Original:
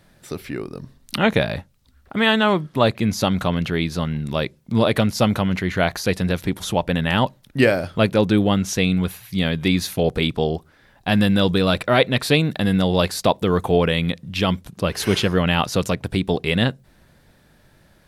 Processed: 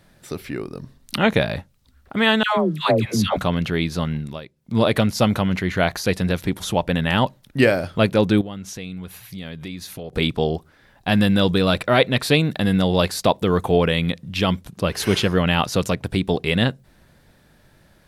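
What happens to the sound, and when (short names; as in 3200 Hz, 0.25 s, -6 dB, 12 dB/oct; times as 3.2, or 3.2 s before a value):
2.43–3.37 dispersion lows, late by 0.147 s, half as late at 750 Hz
4.15–4.81 dip -15 dB, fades 0.26 s
8.41–10.13 compressor 3:1, threshold -34 dBFS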